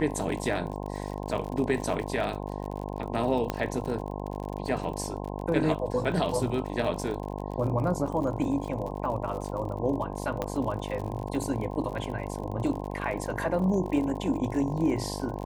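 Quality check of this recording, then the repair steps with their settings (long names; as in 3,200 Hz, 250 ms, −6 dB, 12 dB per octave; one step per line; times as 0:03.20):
mains buzz 50 Hz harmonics 21 −35 dBFS
surface crackle 50 per second −35 dBFS
0:03.50: click −14 dBFS
0:10.42: click −16 dBFS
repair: click removal
hum removal 50 Hz, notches 21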